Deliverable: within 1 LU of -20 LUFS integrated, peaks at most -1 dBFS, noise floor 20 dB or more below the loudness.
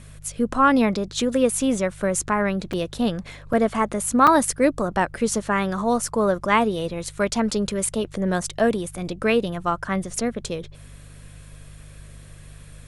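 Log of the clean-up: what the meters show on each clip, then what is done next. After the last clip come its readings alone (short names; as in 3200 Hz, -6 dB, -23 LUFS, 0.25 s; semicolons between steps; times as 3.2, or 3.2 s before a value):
dropouts 5; longest dropout 4.3 ms; hum 50 Hz; harmonics up to 150 Hz; hum level -41 dBFS; loudness -22.5 LUFS; peak -5.0 dBFS; loudness target -20.0 LUFS
-> interpolate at 2.73/3.53/4.27/6.08/10.16, 4.3 ms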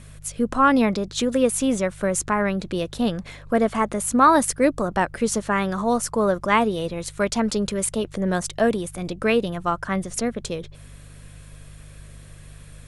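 dropouts 0; hum 50 Hz; harmonics up to 150 Hz; hum level -41 dBFS
-> de-hum 50 Hz, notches 3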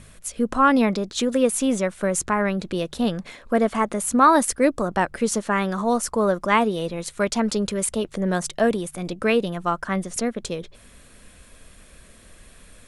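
hum none; loudness -22.5 LUFS; peak -5.0 dBFS; loudness target -20.0 LUFS
-> gain +2.5 dB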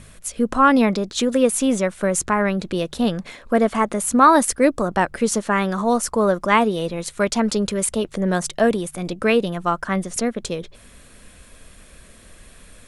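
loudness -20.0 LUFS; peak -2.5 dBFS; noise floor -47 dBFS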